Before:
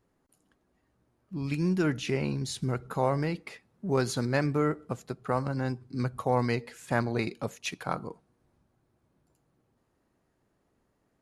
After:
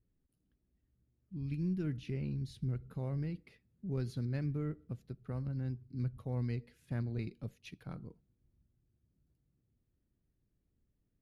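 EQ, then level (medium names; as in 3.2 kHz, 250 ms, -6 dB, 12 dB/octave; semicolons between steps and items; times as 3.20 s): amplifier tone stack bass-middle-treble 10-0-1; treble shelf 4.3 kHz -4.5 dB; peaking EQ 7.4 kHz -12 dB 0.69 oct; +8.5 dB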